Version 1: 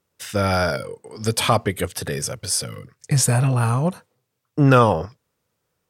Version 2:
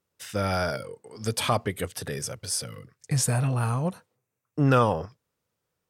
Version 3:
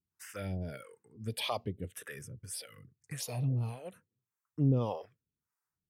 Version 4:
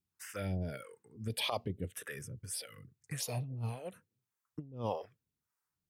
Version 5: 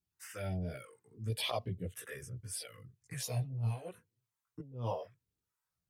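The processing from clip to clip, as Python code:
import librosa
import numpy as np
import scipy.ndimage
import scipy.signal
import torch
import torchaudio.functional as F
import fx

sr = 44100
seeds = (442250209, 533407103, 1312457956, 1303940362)

y1 = fx.spec_box(x, sr, start_s=4.16, length_s=0.38, low_hz=2800.0, high_hz=5700.0, gain_db=-8)
y1 = F.gain(torch.from_numpy(y1), -6.5).numpy()
y2 = fx.harmonic_tremolo(y1, sr, hz=1.7, depth_pct=100, crossover_hz=450.0)
y2 = fx.env_phaser(y2, sr, low_hz=540.0, high_hz=1600.0, full_db=-25.0)
y2 = F.gain(torch.from_numpy(y2), -4.0).numpy()
y3 = fx.over_compress(y2, sr, threshold_db=-34.0, ratio=-0.5)
y3 = F.gain(torch.from_numpy(y3), -1.5).numpy()
y4 = fx.chorus_voices(y3, sr, voices=6, hz=0.34, base_ms=17, depth_ms=1.6, mix_pct=55)
y4 = F.gain(torch.from_numpy(y4), 1.5).numpy()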